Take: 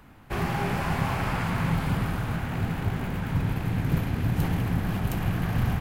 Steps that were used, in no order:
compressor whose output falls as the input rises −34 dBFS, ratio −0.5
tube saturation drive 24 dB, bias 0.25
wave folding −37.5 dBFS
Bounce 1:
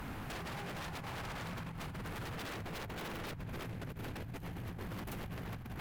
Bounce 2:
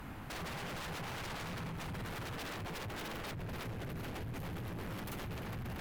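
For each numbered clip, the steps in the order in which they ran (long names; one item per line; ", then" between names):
compressor whose output falls as the input rises, then tube saturation, then wave folding
tube saturation, then compressor whose output falls as the input rises, then wave folding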